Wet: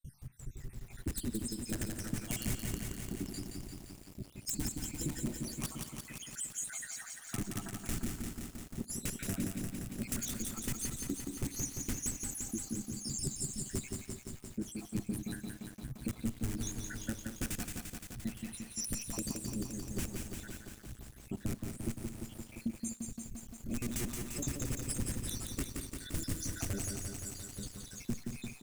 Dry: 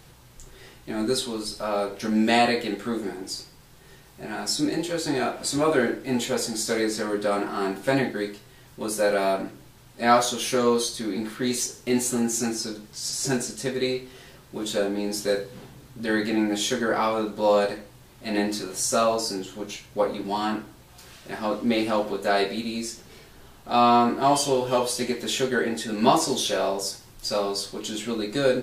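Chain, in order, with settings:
time-frequency cells dropped at random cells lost 81%
wrap-around overflow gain 22 dB
octave-band graphic EQ 125/250/500/4,000/8,000 Hz +3/+6/−5/−10/+6 dB
noise gate with hold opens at −52 dBFS
guitar amp tone stack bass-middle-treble 10-0-1
single-tap delay 226 ms −18 dB
downward compressor, threshold −49 dBFS, peak gain reduction 10 dB
on a send at −19.5 dB: convolution reverb, pre-delay 3 ms
on the sum: feedback echo at a low word length 173 ms, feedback 80%, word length 12 bits, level −4 dB
level +16 dB

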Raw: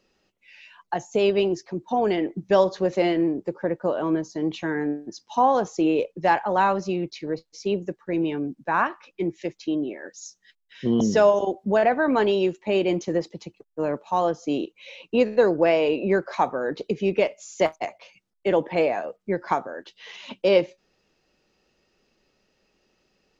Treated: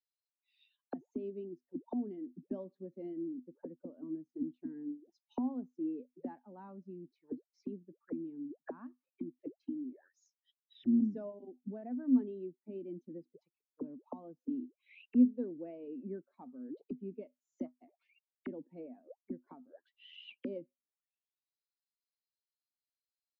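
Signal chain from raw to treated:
spectral dynamics exaggerated over time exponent 1.5
envelope filter 250–4,100 Hz, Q 19, down, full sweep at −29 dBFS
level +5 dB

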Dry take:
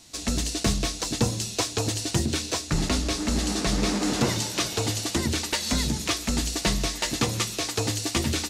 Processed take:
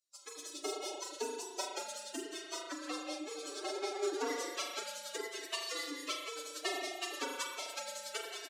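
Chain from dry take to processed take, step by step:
spectral dynamics exaggerated over time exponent 2
on a send: single-tap delay 179 ms −9 dB
on the sum: spring reverb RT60 1.5 s, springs 38 ms, chirp 35 ms, DRR 0 dB
phase-vocoder pitch shift with formants kept +11.5 semitones
Chebyshev high-pass with heavy ripple 280 Hz, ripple 3 dB
level −5.5 dB

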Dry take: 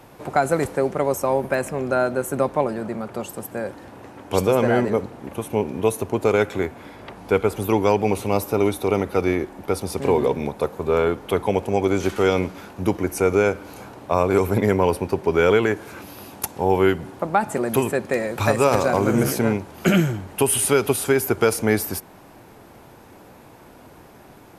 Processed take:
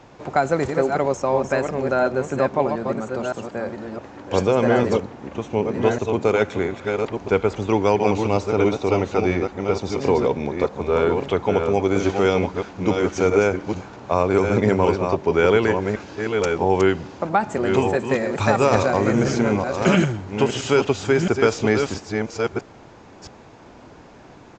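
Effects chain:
delay that plays each chunk backwards 665 ms, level −5 dB
downsampling to 16,000 Hz

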